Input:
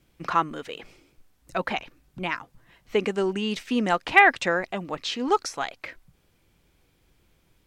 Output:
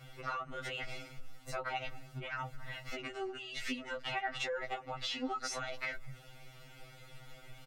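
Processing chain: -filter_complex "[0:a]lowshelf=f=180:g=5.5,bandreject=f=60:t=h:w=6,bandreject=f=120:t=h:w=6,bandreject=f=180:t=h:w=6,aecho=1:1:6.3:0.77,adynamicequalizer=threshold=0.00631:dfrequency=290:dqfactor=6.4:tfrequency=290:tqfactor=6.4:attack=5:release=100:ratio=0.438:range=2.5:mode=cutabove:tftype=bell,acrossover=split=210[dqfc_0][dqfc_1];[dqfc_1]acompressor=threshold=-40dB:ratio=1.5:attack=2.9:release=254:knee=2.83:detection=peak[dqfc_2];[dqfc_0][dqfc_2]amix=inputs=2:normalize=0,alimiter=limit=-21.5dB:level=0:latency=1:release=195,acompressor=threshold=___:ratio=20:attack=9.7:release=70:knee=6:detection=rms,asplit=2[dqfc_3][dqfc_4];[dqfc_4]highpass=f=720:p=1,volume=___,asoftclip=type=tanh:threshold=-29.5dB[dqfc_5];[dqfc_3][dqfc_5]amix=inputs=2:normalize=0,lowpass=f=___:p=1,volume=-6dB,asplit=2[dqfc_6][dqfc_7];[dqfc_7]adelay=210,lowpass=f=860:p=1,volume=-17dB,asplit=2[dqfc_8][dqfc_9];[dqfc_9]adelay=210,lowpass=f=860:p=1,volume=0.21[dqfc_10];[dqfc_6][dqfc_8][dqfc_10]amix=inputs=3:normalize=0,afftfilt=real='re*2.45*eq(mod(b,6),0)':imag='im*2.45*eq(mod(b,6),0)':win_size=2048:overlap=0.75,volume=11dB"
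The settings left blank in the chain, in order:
-44dB, 8dB, 3500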